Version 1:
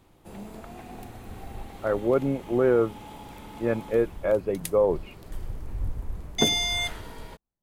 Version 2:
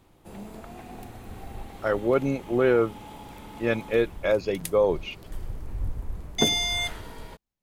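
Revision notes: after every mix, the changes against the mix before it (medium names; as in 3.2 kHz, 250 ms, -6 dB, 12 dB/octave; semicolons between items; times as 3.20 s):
speech: remove low-pass 1.3 kHz 12 dB/octave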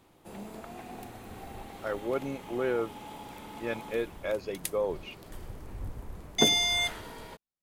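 speech -8.0 dB; master: add bass shelf 110 Hz -11 dB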